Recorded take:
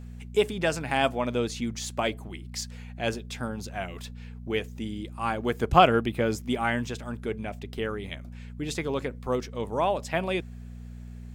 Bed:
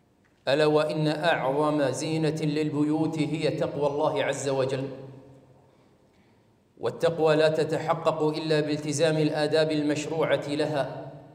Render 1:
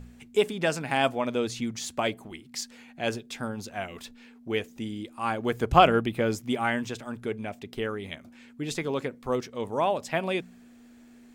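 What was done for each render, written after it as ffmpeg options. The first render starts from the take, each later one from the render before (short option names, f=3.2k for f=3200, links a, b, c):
-af "bandreject=f=60:t=h:w=4,bandreject=f=120:t=h:w=4,bandreject=f=180:t=h:w=4"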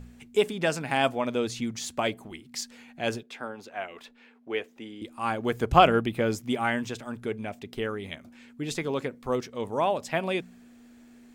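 -filter_complex "[0:a]asettb=1/sr,asplit=3[a][b][c];[a]atrim=end=3.234[d];[b]atrim=start=3.23:end=5.02,asetpts=PTS-STARTPTS,afade=t=in:d=0.004:c=qsin,afade=t=out:st=1.786:d=0.004:c=qsin,acrossover=split=300 3400:gain=0.141 1 0.251[e][f][g];[e][f][g]amix=inputs=3:normalize=0[h];[c]atrim=start=5.016[i];[d][h]acrossfade=d=0.004:c1=hsin:c2=qsin[j];[j][i]acrossfade=d=0.004:c1=qsin:c2=hsin"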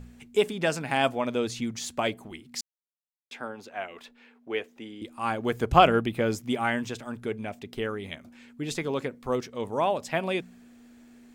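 -filter_complex "[0:a]asplit=3[a][b][c];[a]atrim=end=2.61,asetpts=PTS-STARTPTS,afade=t=out:st=2.606:d=0.004:c=hsin[d];[b]atrim=start=2.61:end=3.31,asetpts=PTS-STARTPTS,volume=0[e];[c]atrim=start=3.31,asetpts=PTS-STARTPTS,afade=t=in:d=0.004:c=hsin[f];[d][e][f]concat=n=3:v=0:a=1"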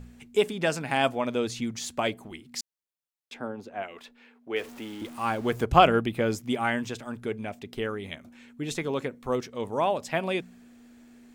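-filter_complex "[0:a]asettb=1/sr,asplit=3[a][b][c];[a]atrim=end=3.344[d];[b]atrim=start=3.34:end=3.83,asetpts=PTS-STARTPTS,afade=t=in:d=0.004:c=qsin,afade=t=out:st=0.486:d=0.004:c=qsin,tiltshelf=f=800:g=6.5[e];[c]atrim=start=3.826[f];[d][e]acrossfade=d=0.004:c1=hsin:c2=qsin[g];[g][f]acrossfade=d=0.004:c1=qsin:c2=hsin,asettb=1/sr,asplit=3[h][i][j];[h]atrim=end=4.564[k];[i]atrim=start=4.56:end=5.64,asetpts=PTS-STARTPTS,afade=t=in:d=0.004:c=qsin,afade=t=out:st=1.076:d=0.004:c=qsin,aeval=exprs='val(0)+0.5*0.00891*sgn(val(0))':c=same[l];[j]atrim=start=5.636[m];[k][l]acrossfade=d=0.004:c1=hsin:c2=qsin[n];[n][m]acrossfade=d=0.004:c1=qsin:c2=hsin,asettb=1/sr,asplit=3[o][p][q];[o]atrim=end=7.954[r];[p]atrim=start=7.95:end=9.43,asetpts=PTS-STARTPTS,afade=t=in:d=0.004:c=qsin,afade=t=out:st=1.476:d=0.004:c=qsin,bandreject=f=4.8k:w=12[s];[q]atrim=start=9.426[t];[r][s]acrossfade=d=0.004:c1=hsin:c2=qsin[u];[u][t]acrossfade=d=0.004:c1=qsin:c2=hsin"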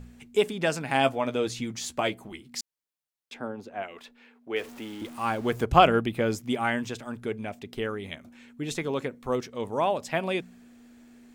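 -filter_complex "[0:a]asettb=1/sr,asplit=3[a][b][c];[a]atrim=end=0.934[d];[b]atrim=start=0.93:end=2.49,asetpts=PTS-STARTPTS,afade=t=in:d=0.004:c=qsin,afade=t=out:st=1.556:d=0.004:c=qsin,asplit=2[e][f];[f]adelay=15,volume=-9dB[g];[e][g]amix=inputs=2:normalize=0,atrim=end_sample=68796[h];[c]atrim=start=2.486[i];[d][h]acrossfade=d=0.004:c1=hsin:c2=qsin[j];[j][i]acrossfade=d=0.004:c1=qsin:c2=hsin"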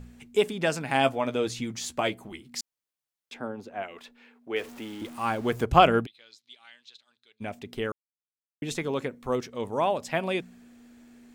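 -filter_complex "[0:a]asplit=3[a][b][c];[a]afade=t=out:st=6.05:d=0.02[d];[b]bandpass=f=4k:t=q:w=7.6,afade=t=in:st=6.05:d=0.02,afade=t=out:st=7.4:d=0.02[e];[c]afade=t=in:st=7.4:d=0.02[f];[d][e][f]amix=inputs=3:normalize=0,asplit=3[g][h][i];[g]atrim=end=7.92,asetpts=PTS-STARTPTS,afade=t=out:st=7.916:d=0.004:c=hsin[j];[h]atrim=start=7.92:end=8.62,asetpts=PTS-STARTPTS,volume=0[k];[i]atrim=start=8.62,asetpts=PTS-STARTPTS,afade=t=in:d=0.004:c=hsin[l];[j][k][l]concat=n=3:v=0:a=1"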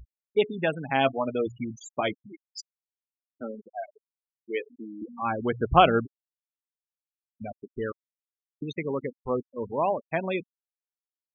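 -af "afftfilt=real='re*gte(hypot(re,im),0.0562)':imag='im*gte(hypot(re,im),0.0562)':win_size=1024:overlap=0.75"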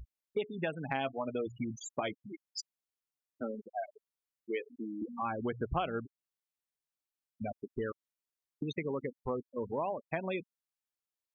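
-af "acompressor=threshold=-33dB:ratio=4"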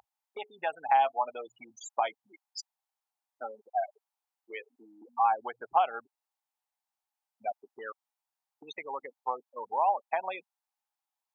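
-af "highpass=f=820:t=q:w=5.8"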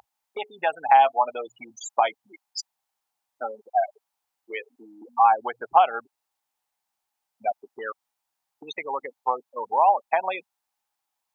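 -af "volume=8dB"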